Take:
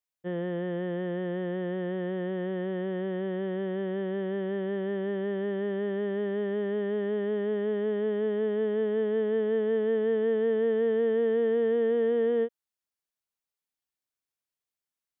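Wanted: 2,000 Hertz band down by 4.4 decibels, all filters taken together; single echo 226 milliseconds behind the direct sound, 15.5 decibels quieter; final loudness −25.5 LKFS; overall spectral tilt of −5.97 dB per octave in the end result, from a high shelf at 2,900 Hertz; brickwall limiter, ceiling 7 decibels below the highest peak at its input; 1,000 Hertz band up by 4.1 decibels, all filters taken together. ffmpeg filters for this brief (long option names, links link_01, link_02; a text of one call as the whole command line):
ffmpeg -i in.wav -af "equalizer=frequency=1000:width_type=o:gain=7,equalizer=frequency=2000:width_type=o:gain=-8.5,highshelf=frequency=2900:gain=3.5,alimiter=level_in=1.5dB:limit=-24dB:level=0:latency=1,volume=-1.5dB,aecho=1:1:226:0.168,volume=7dB" out.wav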